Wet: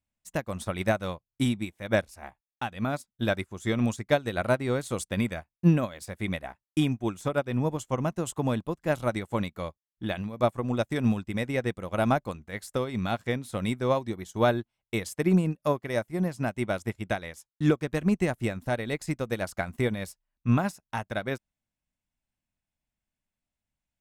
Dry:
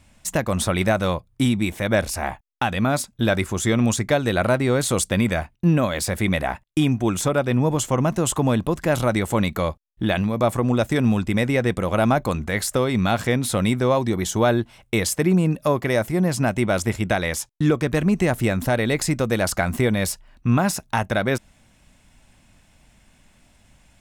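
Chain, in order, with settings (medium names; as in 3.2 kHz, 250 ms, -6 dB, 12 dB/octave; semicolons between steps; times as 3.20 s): upward expansion 2.5:1, over -36 dBFS; trim -1 dB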